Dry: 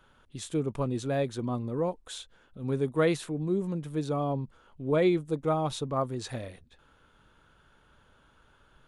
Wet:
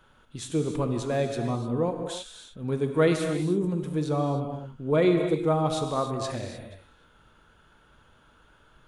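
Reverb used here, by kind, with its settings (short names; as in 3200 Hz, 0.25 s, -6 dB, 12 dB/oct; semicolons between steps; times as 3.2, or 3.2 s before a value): non-linear reverb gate 0.33 s flat, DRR 4.5 dB; gain +2 dB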